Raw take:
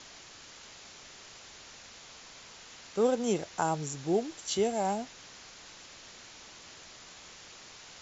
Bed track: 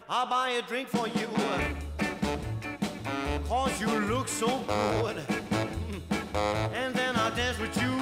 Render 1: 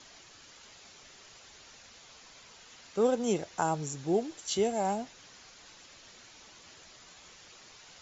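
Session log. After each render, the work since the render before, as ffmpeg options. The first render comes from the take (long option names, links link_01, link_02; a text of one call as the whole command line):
ffmpeg -i in.wav -af "afftdn=noise_reduction=6:noise_floor=-51" out.wav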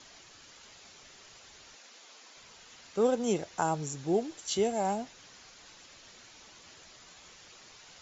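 ffmpeg -i in.wav -filter_complex "[0:a]asettb=1/sr,asplit=3[link_01][link_02][link_03];[link_01]atrim=end=1.754[link_04];[link_02]atrim=start=1.75:end=2.37,asetpts=PTS-STARTPTS,afade=type=in:duration=0.004:curve=qsin,afade=type=out:start_time=0.616:duration=0.004:curve=qsin,highpass=frequency=240:width=0.5412,highpass=frequency=240:width=1.3066[link_05];[link_03]atrim=start=2.366[link_06];[link_04][link_05]acrossfade=duration=0.004:curve1=hsin:curve2=qsin[link_07];[link_07][link_06]acrossfade=duration=0.004:curve1=qsin:curve2=hsin" out.wav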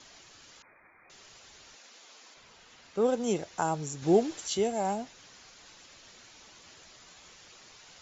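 ffmpeg -i in.wav -filter_complex "[0:a]asettb=1/sr,asplit=3[link_01][link_02][link_03];[link_01]atrim=end=0.624[link_04];[link_02]atrim=start=0.62:end=1.1,asetpts=PTS-STARTPTS,afade=type=in:duration=0.004:curve=qsin,afade=type=out:start_time=0.476:duration=0.004:curve=qsin,lowpass=frequency=2100:width_type=q:width=0.5098,lowpass=frequency=2100:width_type=q:width=0.6013,lowpass=frequency=2100:width_type=q:width=0.9,lowpass=frequency=2100:width_type=q:width=2.563,afreqshift=-2500[link_05];[link_03]atrim=start=1.096[link_06];[link_04][link_05]acrossfade=duration=0.004:curve1=hsin:curve2=qsin[link_07];[link_07][link_06]acrossfade=duration=0.004:curve1=qsin:curve2=hsin,asettb=1/sr,asplit=3[link_08][link_09][link_10];[link_08]atrim=end=2.344[link_11];[link_09]atrim=start=2.34:end=3.08,asetpts=PTS-STARTPTS,afade=type=in:duration=0.004:curve=qsin,afade=type=out:start_time=0.736:duration=0.004:curve=qsin,highshelf=frequency=5300:gain=-8.5[link_12];[link_10]atrim=start=3.076[link_13];[link_11][link_12]acrossfade=duration=0.004:curve1=hsin:curve2=qsin[link_14];[link_14][link_13]acrossfade=duration=0.004:curve1=qsin:curve2=hsin,asettb=1/sr,asplit=3[link_15][link_16][link_17];[link_15]atrim=end=4.024[link_18];[link_16]atrim=start=4.02:end=4.48,asetpts=PTS-STARTPTS,afade=type=in:duration=0.004:curve=qsin,afade=type=out:start_time=0.456:duration=0.004:curve=qsin,acontrast=40[link_19];[link_17]atrim=start=4.476[link_20];[link_18][link_19]acrossfade=duration=0.004:curve1=hsin:curve2=qsin[link_21];[link_21][link_20]acrossfade=duration=0.004:curve1=qsin:curve2=hsin" out.wav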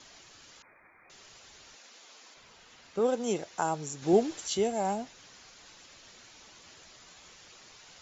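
ffmpeg -i in.wav -filter_complex "[0:a]asettb=1/sr,asplit=3[link_01][link_02][link_03];[link_01]atrim=end=2.994[link_04];[link_02]atrim=start=2.99:end=4.13,asetpts=PTS-STARTPTS,afade=type=in:duration=0.004:curve=qsin,afade=type=out:start_time=1.136:duration=0.004:curve=qsin,lowshelf=frequency=130:gain=-10[link_05];[link_03]atrim=start=4.126[link_06];[link_04][link_05]acrossfade=duration=0.004:curve1=hsin:curve2=qsin[link_07];[link_07][link_06]acrossfade=duration=0.004:curve1=qsin:curve2=hsin" out.wav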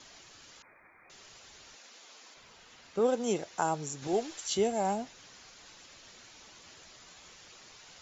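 ffmpeg -i in.wav -filter_complex "[0:a]asettb=1/sr,asplit=3[link_01][link_02][link_03];[link_01]atrim=end=4.074[link_04];[link_02]atrim=start=4.07:end=4.49,asetpts=PTS-STARTPTS,afade=type=in:duration=0.004:curve=qsin,afade=type=out:start_time=0.416:duration=0.004:curve=qsin,equalizer=frequency=180:width=0.39:gain=-11[link_05];[link_03]atrim=start=4.486[link_06];[link_04][link_05]acrossfade=duration=0.004:curve1=hsin:curve2=qsin[link_07];[link_07][link_06]acrossfade=duration=0.004:curve1=qsin:curve2=hsin" out.wav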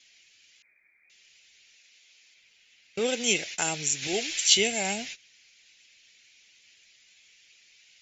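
ffmpeg -i in.wav -af "agate=range=-20dB:threshold=-47dB:ratio=16:detection=peak,highshelf=frequency=1600:width_type=q:width=3:gain=13" out.wav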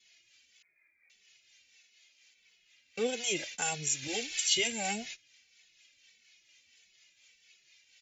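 ffmpeg -i in.wav -filter_complex "[0:a]acrossover=split=460[link_01][link_02];[link_01]aeval=exprs='val(0)*(1-0.5/2+0.5/2*cos(2*PI*4.2*n/s))':channel_layout=same[link_03];[link_02]aeval=exprs='val(0)*(1-0.5/2-0.5/2*cos(2*PI*4.2*n/s))':channel_layout=same[link_04];[link_03][link_04]amix=inputs=2:normalize=0,asplit=2[link_05][link_06];[link_06]adelay=2.3,afreqshift=-1.6[link_07];[link_05][link_07]amix=inputs=2:normalize=1" out.wav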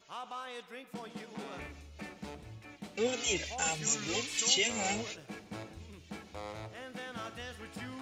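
ffmpeg -i in.wav -i bed.wav -filter_complex "[1:a]volume=-15dB[link_01];[0:a][link_01]amix=inputs=2:normalize=0" out.wav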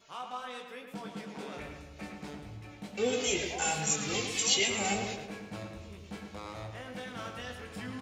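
ffmpeg -i in.wav -filter_complex "[0:a]asplit=2[link_01][link_02];[link_02]adelay=20,volume=-5.5dB[link_03];[link_01][link_03]amix=inputs=2:normalize=0,asplit=2[link_04][link_05];[link_05]adelay=109,lowpass=frequency=3000:poles=1,volume=-5.5dB,asplit=2[link_06][link_07];[link_07]adelay=109,lowpass=frequency=3000:poles=1,volume=0.54,asplit=2[link_08][link_09];[link_09]adelay=109,lowpass=frequency=3000:poles=1,volume=0.54,asplit=2[link_10][link_11];[link_11]adelay=109,lowpass=frequency=3000:poles=1,volume=0.54,asplit=2[link_12][link_13];[link_13]adelay=109,lowpass=frequency=3000:poles=1,volume=0.54,asplit=2[link_14][link_15];[link_15]adelay=109,lowpass=frequency=3000:poles=1,volume=0.54,asplit=2[link_16][link_17];[link_17]adelay=109,lowpass=frequency=3000:poles=1,volume=0.54[link_18];[link_06][link_08][link_10][link_12][link_14][link_16][link_18]amix=inputs=7:normalize=0[link_19];[link_04][link_19]amix=inputs=2:normalize=0" out.wav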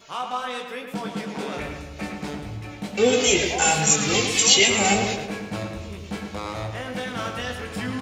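ffmpeg -i in.wav -af "volume=11.5dB,alimiter=limit=-2dB:level=0:latency=1" out.wav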